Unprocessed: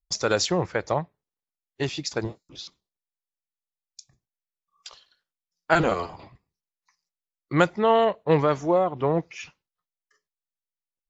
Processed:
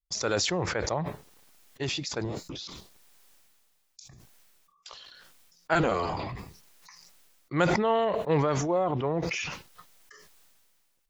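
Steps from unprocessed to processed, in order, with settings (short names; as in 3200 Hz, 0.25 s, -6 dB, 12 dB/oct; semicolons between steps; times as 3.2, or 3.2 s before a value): sustainer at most 25 dB/s; gain -6 dB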